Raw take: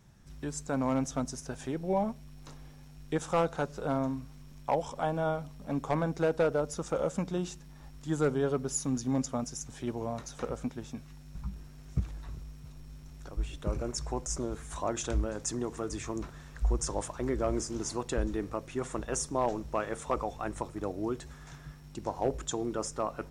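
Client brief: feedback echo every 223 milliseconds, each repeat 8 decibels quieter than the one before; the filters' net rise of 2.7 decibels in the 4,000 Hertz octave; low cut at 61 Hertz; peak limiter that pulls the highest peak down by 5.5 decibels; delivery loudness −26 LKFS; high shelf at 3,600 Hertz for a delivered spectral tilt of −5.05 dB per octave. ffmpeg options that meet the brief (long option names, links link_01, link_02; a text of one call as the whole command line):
ffmpeg -i in.wav -af "highpass=61,highshelf=frequency=3600:gain=-6,equalizer=frequency=4000:width_type=o:gain=8.5,alimiter=limit=-22dB:level=0:latency=1,aecho=1:1:223|446|669|892|1115:0.398|0.159|0.0637|0.0255|0.0102,volume=9dB" out.wav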